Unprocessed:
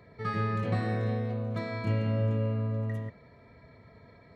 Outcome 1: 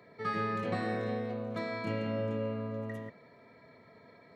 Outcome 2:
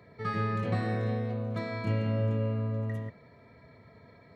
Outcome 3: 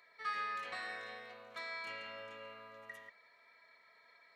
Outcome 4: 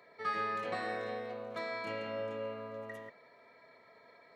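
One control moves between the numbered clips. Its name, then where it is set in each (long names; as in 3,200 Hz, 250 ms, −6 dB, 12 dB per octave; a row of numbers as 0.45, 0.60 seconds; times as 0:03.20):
high-pass filter, corner frequency: 210, 78, 1,400, 530 Hertz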